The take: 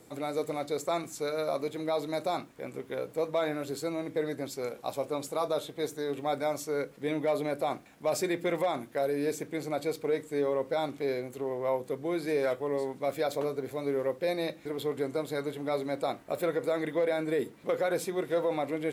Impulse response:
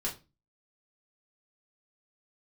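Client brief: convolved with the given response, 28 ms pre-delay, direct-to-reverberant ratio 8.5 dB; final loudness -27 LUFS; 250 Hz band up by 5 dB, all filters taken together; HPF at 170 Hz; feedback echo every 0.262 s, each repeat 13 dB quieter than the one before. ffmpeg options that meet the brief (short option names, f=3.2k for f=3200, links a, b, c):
-filter_complex "[0:a]highpass=170,equalizer=f=250:t=o:g=7.5,aecho=1:1:262|524|786:0.224|0.0493|0.0108,asplit=2[a][b];[1:a]atrim=start_sample=2205,adelay=28[c];[b][c]afir=irnorm=-1:irlink=0,volume=-12dB[d];[a][d]amix=inputs=2:normalize=0,volume=2dB"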